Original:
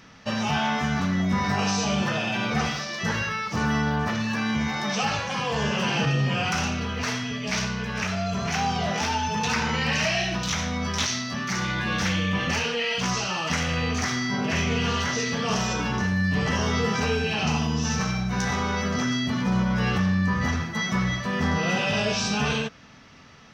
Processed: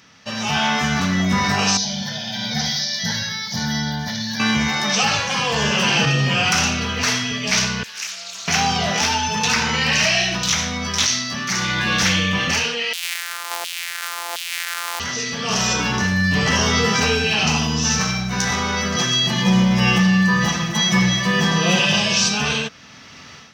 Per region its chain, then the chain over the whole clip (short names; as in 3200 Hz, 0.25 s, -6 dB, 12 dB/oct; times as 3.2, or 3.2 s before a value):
1.77–4.4 Bessel high-pass 160 Hz + band shelf 1000 Hz -9 dB 2.8 oct + fixed phaser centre 1800 Hz, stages 8
7.83–8.48 differentiator + Doppler distortion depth 0.19 ms
12.93–15 sample sorter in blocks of 256 samples + HPF 290 Hz 24 dB/oct + LFO high-pass saw down 1.4 Hz 720–3200 Hz
18.96–22.29 notch 1400 Hz, Q 6.9 + comb 5.8 ms, depth 92% + echo 0.255 s -12.5 dB
whole clip: HPF 61 Hz; high shelf 2100 Hz +9.5 dB; AGC; gain -4 dB